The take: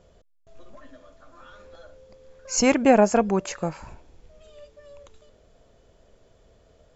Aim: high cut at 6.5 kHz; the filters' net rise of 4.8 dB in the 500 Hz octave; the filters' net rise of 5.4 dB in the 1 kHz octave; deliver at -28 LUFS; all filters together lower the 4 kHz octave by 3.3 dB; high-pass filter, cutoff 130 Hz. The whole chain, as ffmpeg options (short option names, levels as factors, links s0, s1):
-af "highpass=130,lowpass=6500,equalizer=f=500:t=o:g=4,equalizer=f=1000:t=o:g=6,equalizer=f=4000:t=o:g=-4,volume=0.316"